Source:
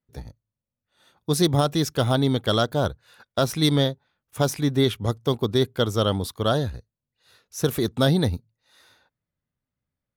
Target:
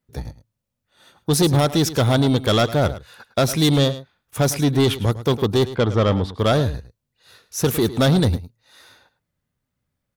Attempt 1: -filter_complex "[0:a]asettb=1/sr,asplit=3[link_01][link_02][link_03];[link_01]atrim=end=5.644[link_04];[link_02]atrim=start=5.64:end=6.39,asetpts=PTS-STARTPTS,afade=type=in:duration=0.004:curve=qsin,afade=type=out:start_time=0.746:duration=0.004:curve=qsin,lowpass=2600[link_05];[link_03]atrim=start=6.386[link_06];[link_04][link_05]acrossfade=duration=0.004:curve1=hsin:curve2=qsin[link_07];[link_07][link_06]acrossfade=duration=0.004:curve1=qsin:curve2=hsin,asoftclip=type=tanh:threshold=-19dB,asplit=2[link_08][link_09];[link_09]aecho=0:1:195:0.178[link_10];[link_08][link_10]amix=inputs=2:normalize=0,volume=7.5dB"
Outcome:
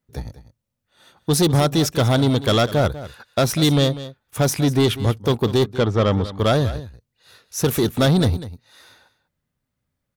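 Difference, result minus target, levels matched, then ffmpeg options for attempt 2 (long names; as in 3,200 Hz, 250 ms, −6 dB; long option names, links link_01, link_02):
echo 89 ms late
-filter_complex "[0:a]asettb=1/sr,asplit=3[link_01][link_02][link_03];[link_01]atrim=end=5.644[link_04];[link_02]atrim=start=5.64:end=6.39,asetpts=PTS-STARTPTS,afade=type=in:duration=0.004:curve=qsin,afade=type=out:start_time=0.746:duration=0.004:curve=qsin,lowpass=2600[link_05];[link_03]atrim=start=6.386[link_06];[link_04][link_05]acrossfade=duration=0.004:curve1=hsin:curve2=qsin[link_07];[link_07][link_06]acrossfade=duration=0.004:curve1=qsin:curve2=hsin,asoftclip=type=tanh:threshold=-19dB,asplit=2[link_08][link_09];[link_09]aecho=0:1:106:0.178[link_10];[link_08][link_10]amix=inputs=2:normalize=0,volume=7.5dB"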